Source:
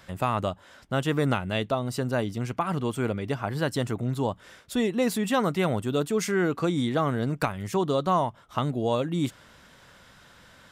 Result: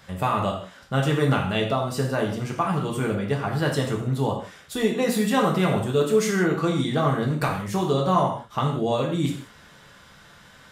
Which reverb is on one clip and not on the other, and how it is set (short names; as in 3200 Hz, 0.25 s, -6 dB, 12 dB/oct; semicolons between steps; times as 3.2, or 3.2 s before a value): non-linear reverb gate 0.21 s falling, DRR -1 dB